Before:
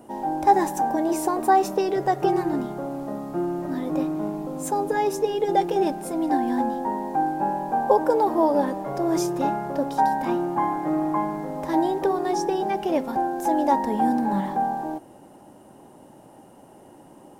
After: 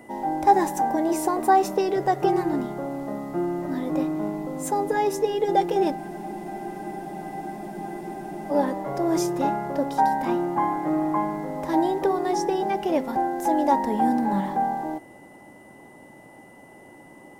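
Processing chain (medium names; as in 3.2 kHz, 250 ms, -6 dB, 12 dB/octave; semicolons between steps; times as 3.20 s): whistle 2 kHz -52 dBFS; spectral freeze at 6.00 s, 2.50 s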